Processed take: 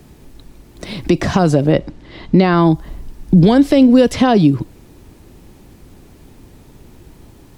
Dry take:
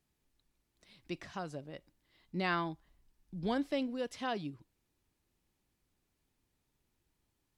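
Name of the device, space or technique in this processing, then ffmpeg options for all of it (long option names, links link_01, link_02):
mastering chain: -filter_complex "[0:a]equalizer=frequency=410:width_type=o:width=2.3:gain=2.5,acrossover=split=160|1500|4000[link_01][link_02][link_03][link_04];[link_01]acompressor=threshold=-56dB:ratio=4[link_05];[link_02]acompressor=threshold=-45dB:ratio=4[link_06];[link_03]acompressor=threshold=-58dB:ratio=4[link_07];[link_04]acompressor=threshold=-59dB:ratio=4[link_08];[link_05][link_06][link_07][link_08]amix=inputs=4:normalize=0,acompressor=threshold=-43dB:ratio=2,tiltshelf=frequency=840:gain=5,asoftclip=type=hard:threshold=-31.5dB,alimiter=level_in=35dB:limit=-1dB:release=50:level=0:latency=1,asettb=1/sr,asplit=3[link_09][link_10][link_11];[link_09]atrim=end=1.724[link_12];[link_10]atrim=start=1.72:end=2.55,asetpts=PTS-STARTPTS,afade=type=in:duration=0.004:curve=qsin,afade=type=out:start_time=0.826:duration=0.004:curve=qsin,lowpass=5200[link_13];[link_11]atrim=start=2.546[link_14];[link_12][link_13]acrossfade=duration=0.004:curve1=hsin:curve2=qsin[link_15];[link_15][link_14]acrossfade=duration=0.004:curve1=qsin:curve2=hsin,volume=-1dB"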